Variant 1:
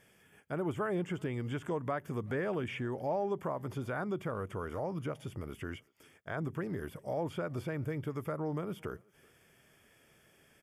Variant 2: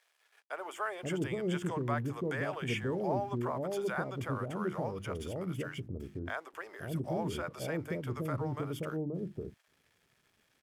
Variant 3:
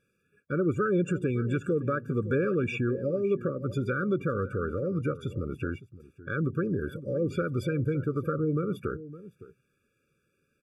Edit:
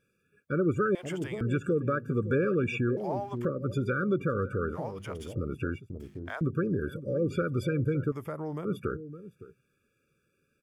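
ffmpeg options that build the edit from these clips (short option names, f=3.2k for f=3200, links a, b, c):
-filter_complex "[1:a]asplit=4[a][b][c][d];[2:a]asplit=6[e][f][g][h][i][j];[e]atrim=end=0.952[k];[a]atrim=start=0.948:end=1.412[l];[f]atrim=start=1.408:end=2.972[m];[b]atrim=start=2.968:end=3.452[n];[g]atrim=start=3.448:end=4.78[o];[c]atrim=start=4.72:end=5.36[p];[h]atrim=start=5.3:end=5.902[q];[d]atrim=start=5.898:end=6.412[r];[i]atrim=start=6.408:end=8.122[s];[0:a]atrim=start=8.118:end=8.652[t];[j]atrim=start=8.648[u];[k][l]acrossfade=d=0.004:c1=hsin:c2=hsin[v];[v][m]acrossfade=d=0.004:c1=hsin:c2=hsin[w];[w][n]acrossfade=d=0.004:c1=hsin:c2=hsin[x];[x][o]acrossfade=d=0.004:c1=hsin:c2=hsin[y];[y][p]acrossfade=d=0.06:c1=tri:c2=tri[z];[z][q]acrossfade=d=0.06:c1=tri:c2=tri[aa];[aa][r]acrossfade=d=0.004:c1=hsin:c2=hsin[ab];[ab][s]acrossfade=d=0.004:c1=hsin:c2=hsin[ac];[ac][t]acrossfade=d=0.004:c1=hsin:c2=hsin[ad];[ad][u]acrossfade=d=0.004:c1=hsin:c2=hsin"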